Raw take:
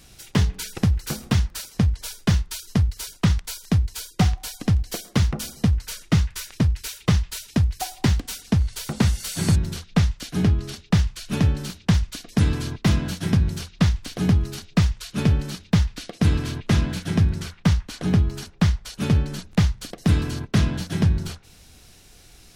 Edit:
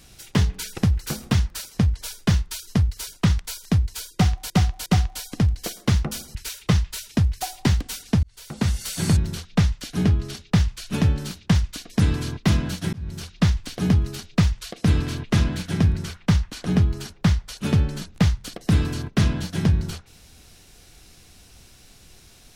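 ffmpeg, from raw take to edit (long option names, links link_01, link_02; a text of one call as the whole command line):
ffmpeg -i in.wav -filter_complex "[0:a]asplit=7[link_01][link_02][link_03][link_04][link_05][link_06][link_07];[link_01]atrim=end=4.502[link_08];[link_02]atrim=start=4.138:end=4.502[link_09];[link_03]atrim=start=4.138:end=5.632[link_10];[link_04]atrim=start=6.738:end=8.62,asetpts=PTS-STARTPTS,afade=type=out:start_time=1.878:duration=0.004:curve=hsin[link_11];[link_05]atrim=start=8.62:end=13.32,asetpts=PTS-STARTPTS,afade=type=in:duration=0.59,afade=type=out:start_time=4.696:duration=0.004:curve=hsin[link_12];[link_06]atrim=start=13.32:end=15.112,asetpts=PTS-STARTPTS,afade=type=in:duration=0.38[link_13];[link_07]atrim=start=16.088[link_14];[link_08][link_09]acrossfade=duration=0.004:curve1=hsin:curve2=hsin[link_15];[link_15][link_10]acrossfade=duration=0.004:curve1=hsin:curve2=hsin[link_16];[link_11][link_12][link_13]concat=n=3:v=0:a=1[link_17];[link_16][link_17]acrossfade=duration=0.004:curve1=hsin:curve2=hsin[link_18];[link_18][link_14]acrossfade=duration=0.004:curve1=hsin:curve2=hsin" out.wav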